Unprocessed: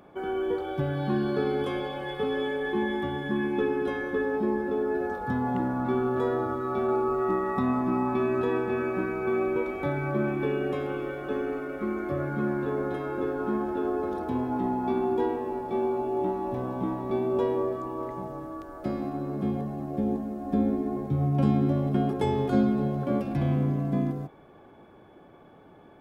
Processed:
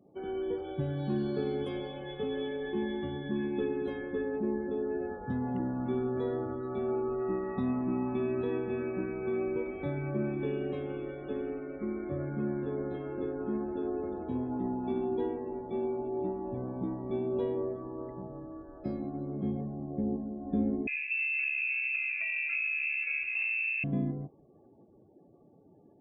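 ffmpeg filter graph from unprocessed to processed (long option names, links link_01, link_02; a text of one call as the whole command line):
ffmpeg -i in.wav -filter_complex "[0:a]asettb=1/sr,asplit=3[link_01][link_02][link_03];[link_01]atrim=end=20.874[link_04];[link_02]atrim=start=20.87:end=23.84,asetpts=PTS-STARTPTS,afade=type=in:duration=0.004:curve=qsin,afade=type=out:start_time=2.966:duration=0.004:curve=qsin,acompressor=threshold=-25dB:ratio=6:attack=3.2:release=140:knee=1:detection=peak,lowpass=frequency=2400:width_type=q:width=0.5098,lowpass=frequency=2400:width_type=q:width=0.6013,lowpass=frequency=2400:width_type=q:width=0.9,lowpass=frequency=2400:width_type=q:width=2.563,afreqshift=-2800,aemphasis=mode=production:type=75kf[link_05];[link_03]atrim=start=23.836[link_06];[link_04][link_05]acrossfade=duration=0.004:curve1=hsin:curve2=qsin[link_07];[link_07][link_06]acrossfade=duration=0.004:curve1=qsin:curve2=hsin,afftdn=noise_reduction=34:noise_floor=-49,equalizer=frequency=1200:width_type=o:width=1.6:gain=-10.5,volume=-3.5dB" out.wav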